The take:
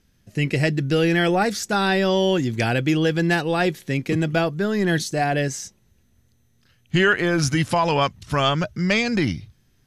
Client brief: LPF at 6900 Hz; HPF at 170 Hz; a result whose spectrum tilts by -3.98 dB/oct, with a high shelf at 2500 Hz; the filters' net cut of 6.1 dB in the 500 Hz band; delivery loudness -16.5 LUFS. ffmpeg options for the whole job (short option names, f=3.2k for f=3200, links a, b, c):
-af "highpass=170,lowpass=6.9k,equalizer=f=500:t=o:g=-8,highshelf=f=2.5k:g=-4,volume=8.5dB"